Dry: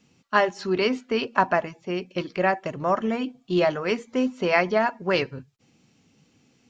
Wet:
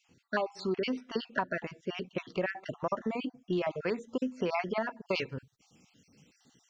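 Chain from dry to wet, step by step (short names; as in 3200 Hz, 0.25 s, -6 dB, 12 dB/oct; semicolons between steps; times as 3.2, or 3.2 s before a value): random spectral dropouts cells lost 38%; high shelf 2600 Hz -3.5 dB, from 5.09 s +5 dB; compressor 6:1, threshold -27 dBFS, peak gain reduction 11.5 dB; gain -1 dB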